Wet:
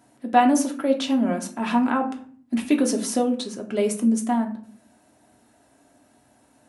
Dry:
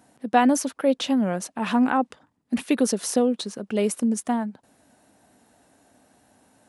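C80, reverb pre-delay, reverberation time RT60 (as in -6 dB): 16.0 dB, 3 ms, 0.50 s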